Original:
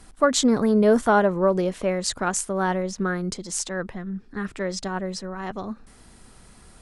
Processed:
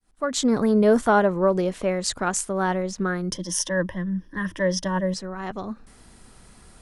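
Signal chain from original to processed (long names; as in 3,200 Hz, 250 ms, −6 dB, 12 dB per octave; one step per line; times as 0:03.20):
fade in at the beginning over 0.58 s
0:03.32–0:05.14: EQ curve with evenly spaced ripples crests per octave 1.2, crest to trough 15 dB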